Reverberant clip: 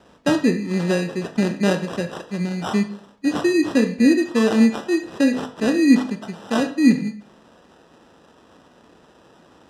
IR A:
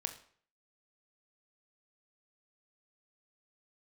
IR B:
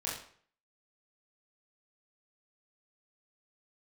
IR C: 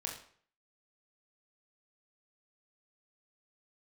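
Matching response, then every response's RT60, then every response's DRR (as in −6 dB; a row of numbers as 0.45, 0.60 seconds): A; 0.55, 0.55, 0.55 seconds; 7.0, −6.5, −0.5 decibels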